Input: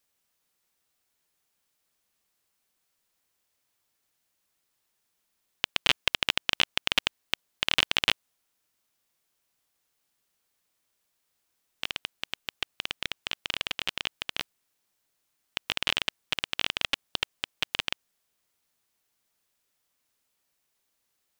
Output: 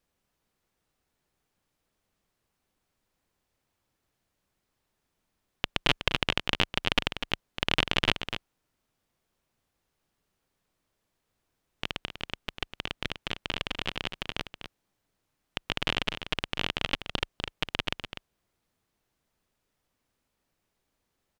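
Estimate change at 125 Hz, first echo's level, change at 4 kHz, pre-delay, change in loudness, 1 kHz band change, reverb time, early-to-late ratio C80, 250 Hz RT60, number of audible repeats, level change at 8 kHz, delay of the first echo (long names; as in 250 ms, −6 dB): +10.5 dB, −9.5 dB, −2.5 dB, no reverb audible, −1.5 dB, +2.5 dB, no reverb audible, no reverb audible, no reverb audible, 1, −6.0 dB, 248 ms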